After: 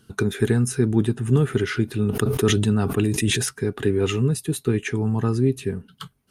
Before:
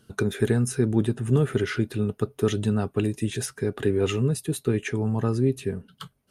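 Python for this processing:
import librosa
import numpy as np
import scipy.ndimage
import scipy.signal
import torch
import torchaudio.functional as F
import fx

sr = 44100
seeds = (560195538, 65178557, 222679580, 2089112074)

y = fx.peak_eq(x, sr, hz=580.0, db=-8.5, octaves=0.42)
y = fx.sustainer(y, sr, db_per_s=29.0, at=(1.85, 3.49))
y = y * 10.0 ** (3.0 / 20.0)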